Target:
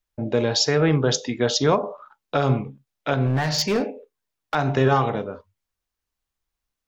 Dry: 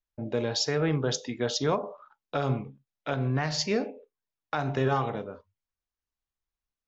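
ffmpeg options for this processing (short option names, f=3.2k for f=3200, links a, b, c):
-filter_complex "[0:a]asettb=1/sr,asplit=3[a][b][c];[a]atrim=end=3.264[d];[b]atrim=start=3.26:end=4.55,asetpts=PTS-STARTPTS,afade=t=in:d=0.004:c=qsin,afade=t=out:st=1.286:d=0.004:c=qsin,asoftclip=type=hard:threshold=-24.5dB[e];[c]atrim=start=4.546[f];[d][e]acrossfade=d=0.004:c1=hsin:c2=qsin[g];[g][f]acrossfade=d=0.004:c1=qsin:c2=hsin,volume=7.5dB"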